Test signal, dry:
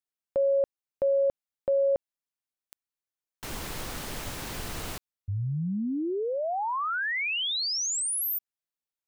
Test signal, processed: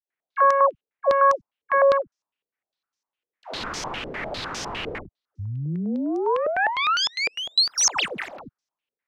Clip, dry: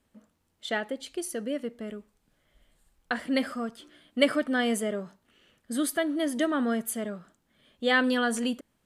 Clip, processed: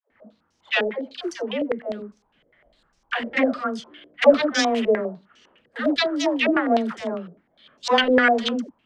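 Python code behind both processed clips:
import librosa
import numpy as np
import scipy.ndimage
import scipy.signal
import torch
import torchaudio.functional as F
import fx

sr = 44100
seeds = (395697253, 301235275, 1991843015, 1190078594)

y = fx.self_delay(x, sr, depth_ms=0.33)
y = fx.low_shelf(y, sr, hz=120.0, db=-11.0)
y = fx.dispersion(y, sr, late='lows', ms=112.0, hz=550.0)
y = fx.filter_held_lowpass(y, sr, hz=9.9, low_hz=470.0, high_hz=5800.0)
y = y * librosa.db_to_amplitude(5.5)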